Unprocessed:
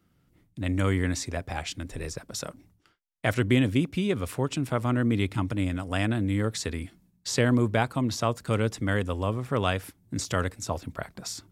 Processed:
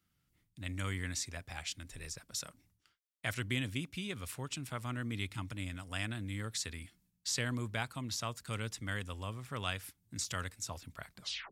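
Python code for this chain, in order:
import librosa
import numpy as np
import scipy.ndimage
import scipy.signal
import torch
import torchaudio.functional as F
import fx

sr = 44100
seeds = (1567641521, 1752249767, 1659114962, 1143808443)

y = fx.tape_stop_end(x, sr, length_s=0.32)
y = fx.tone_stack(y, sr, knobs='5-5-5')
y = y * librosa.db_to_amplitude(2.5)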